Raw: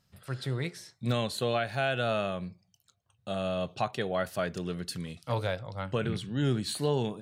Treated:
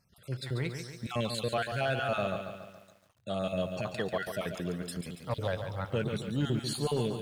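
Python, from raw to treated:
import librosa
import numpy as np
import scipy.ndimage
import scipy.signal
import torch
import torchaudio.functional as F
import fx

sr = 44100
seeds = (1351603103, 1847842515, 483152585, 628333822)

y = fx.spec_dropout(x, sr, seeds[0], share_pct=32)
y = 10.0 ** (-19.5 / 20.0) * np.tanh(y / 10.0 ** (-19.5 / 20.0))
y = fx.echo_crushed(y, sr, ms=141, feedback_pct=55, bits=10, wet_db=-7.5)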